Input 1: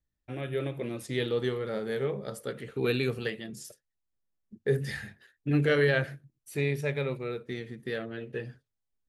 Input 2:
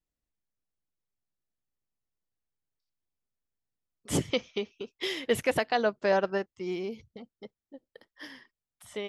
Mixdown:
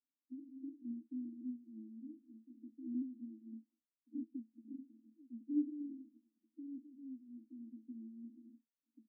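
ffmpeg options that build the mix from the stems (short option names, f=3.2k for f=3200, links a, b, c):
-filter_complex "[0:a]acrossover=split=420[a][b];[a]aeval=exprs='val(0)*(1-0.7/2+0.7/2*cos(2*PI*3.4*n/s))':c=same[c];[b]aeval=exprs='val(0)*(1-0.7/2-0.7/2*cos(2*PI*3.4*n/s))':c=same[d];[c][d]amix=inputs=2:normalize=0,volume=-2dB,asplit=2[e][f];[1:a]volume=-8dB[g];[f]apad=whole_len=400572[h];[g][h]sidechaincompress=threshold=-52dB:ratio=8:attack=16:release=390[i];[e][i]amix=inputs=2:normalize=0,asuperpass=centerf=270:order=20:qfactor=2.6,aecho=1:1:1.2:0.44"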